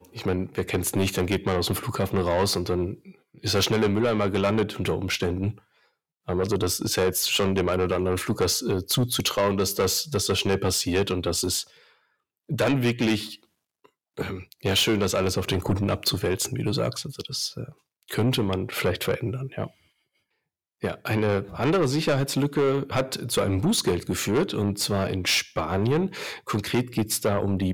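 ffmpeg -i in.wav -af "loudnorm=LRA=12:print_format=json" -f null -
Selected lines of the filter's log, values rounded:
"input_i" : "-25.1",
"input_tp" : "-14.8",
"input_lra" : "3.5",
"input_thresh" : "-35.5",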